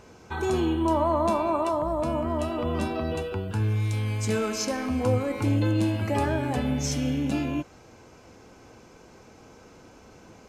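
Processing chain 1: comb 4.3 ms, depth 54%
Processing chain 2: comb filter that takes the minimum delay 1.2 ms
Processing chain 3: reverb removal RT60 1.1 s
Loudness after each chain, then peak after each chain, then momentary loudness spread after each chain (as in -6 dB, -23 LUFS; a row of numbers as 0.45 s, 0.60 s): -26.5 LUFS, -28.5 LUFS, -29.0 LUFS; -10.5 dBFS, -14.0 dBFS, -13.0 dBFS; 7 LU, 7 LU, 6 LU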